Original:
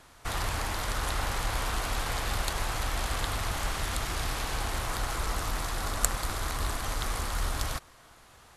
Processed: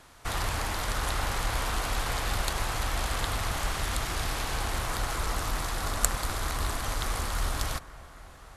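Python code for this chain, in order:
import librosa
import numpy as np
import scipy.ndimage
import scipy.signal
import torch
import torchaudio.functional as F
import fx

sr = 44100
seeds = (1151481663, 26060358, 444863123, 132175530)

y = fx.echo_bbd(x, sr, ms=269, stages=4096, feedback_pct=79, wet_db=-19.5)
y = y * librosa.db_to_amplitude(1.0)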